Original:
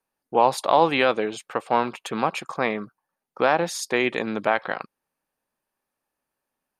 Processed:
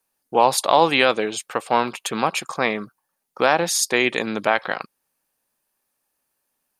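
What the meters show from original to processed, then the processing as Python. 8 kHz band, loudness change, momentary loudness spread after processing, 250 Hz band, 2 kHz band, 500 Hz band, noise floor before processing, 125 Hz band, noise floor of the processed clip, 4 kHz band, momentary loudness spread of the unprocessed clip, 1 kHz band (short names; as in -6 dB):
+11.0 dB, +3.0 dB, 10 LU, +1.5 dB, +4.0 dB, +2.0 dB, -84 dBFS, +1.5 dB, -76 dBFS, +7.0 dB, 13 LU, +2.0 dB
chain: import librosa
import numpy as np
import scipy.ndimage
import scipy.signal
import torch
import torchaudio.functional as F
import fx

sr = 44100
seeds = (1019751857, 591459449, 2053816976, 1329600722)

y = fx.high_shelf(x, sr, hz=3600.0, db=11.5)
y = y * librosa.db_to_amplitude(1.5)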